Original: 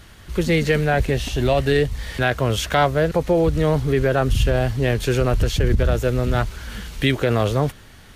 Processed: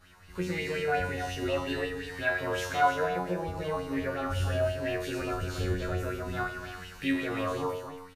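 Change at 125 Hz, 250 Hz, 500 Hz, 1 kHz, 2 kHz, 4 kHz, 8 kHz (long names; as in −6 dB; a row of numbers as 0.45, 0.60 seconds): −15.5, −11.0, −11.5, −6.0, −7.0, −11.5, −11.5 decibels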